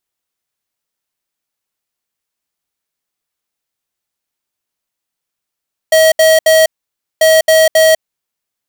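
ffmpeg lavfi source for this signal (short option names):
-f lavfi -i "aevalsrc='0.422*(2*lt(mod(638*t,1),0.5)-1)*clip(min(mod(mod(t,1.29),0.27),0.2-mod(mod(t,1.29),0.27))/0.005,0,1)*lt(mod(t,1.29),0.81)':d=2.58:s=44100"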